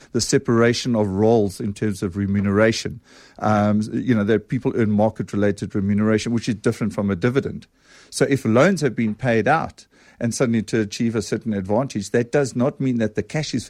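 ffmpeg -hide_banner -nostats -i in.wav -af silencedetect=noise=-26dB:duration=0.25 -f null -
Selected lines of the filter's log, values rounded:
silence_start: 2.92
silence_end: 3.39 | silence_duration: 0.46
silence_start: 7.57
silence_end: 8.14 | silence_duration: 0.56
silence_start: 9.67
silence_end: 10.21 | silence_duration: 0.54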